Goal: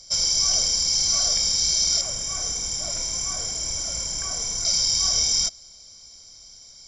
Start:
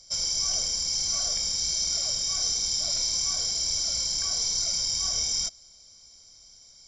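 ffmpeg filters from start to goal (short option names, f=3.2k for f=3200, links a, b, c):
-filter_complex "[0:a]asettb=1/sr,asplit=3[a][b][c];[a]atrim=end=2.014[d];[b]atrim=start=2.01:end=4.65,asetpts=PTS-STARTPTS,afade=t=in:d=0.004:c=qsin,afade=t=out:st=2.636:d=0.004:c=qsin,equalizer=f=4.3k:w=1.7:g=-14.5[e];[c]atrim=start=4.646[f];[d][e]acrossfade=d=0.004:c1=hsin:c2=qsin[g];[g][f]acrossfade=d=0.004:c1=qsin:c2=hsin,volume=6dB"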